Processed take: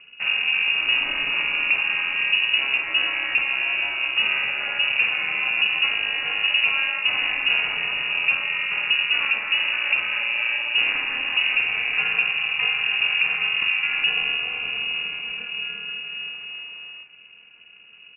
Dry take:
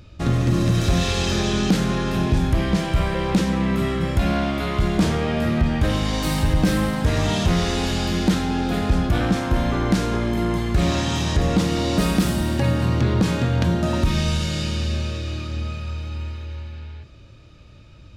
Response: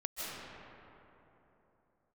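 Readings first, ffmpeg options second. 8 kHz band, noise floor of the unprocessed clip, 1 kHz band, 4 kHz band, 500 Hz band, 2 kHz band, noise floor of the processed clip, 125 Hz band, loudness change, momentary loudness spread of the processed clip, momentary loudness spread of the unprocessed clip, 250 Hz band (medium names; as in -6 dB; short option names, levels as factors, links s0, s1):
under -40 dB, -45 dBFS, -7.0 dB, +7.5 dB, -18.0 dB, +12.0 dB, -48 dBFS, under -30 dB, +1.0 dB, 9 LU, 8 LU, under -25 dB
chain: -filter_complex "[0:a]lowpass=f=2400:t=q:w=0.5098,lowpass=f=2400:t=q:w=0.6013,lowpass=f=2400:t=q:w=0.9,lowpass=f=2400:t=q:w=2.563,afreqshift=-2800,aeval=exprs='val(0)*sin(2*PI*130*n/s)':c=same,asplit=2[s0][s1];[s1]adelay=50,volume=0.211[s2];[s0][s2]amix=inputs=2:normalize=0"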